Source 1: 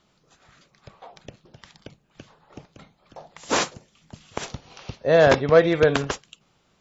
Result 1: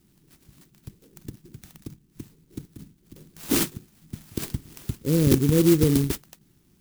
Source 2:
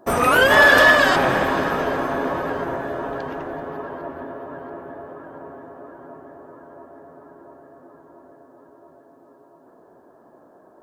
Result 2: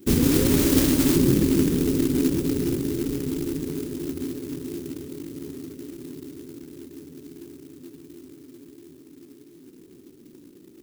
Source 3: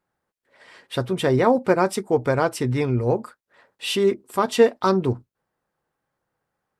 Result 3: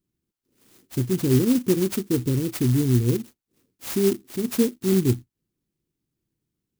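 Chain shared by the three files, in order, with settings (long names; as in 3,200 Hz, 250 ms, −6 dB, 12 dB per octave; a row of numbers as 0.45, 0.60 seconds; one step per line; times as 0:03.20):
elliptic band-stop filter 340–4,600 Hz, stop band 40 dB
dynamic equaliser 2,400 Hz, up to −6 dB, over −49 dBFS, Q 0.75
converter with an unsteady clock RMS 0.1 ms
loudness normalisation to −23 LKFS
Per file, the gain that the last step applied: +7.5, +8.5, +4.5 decibels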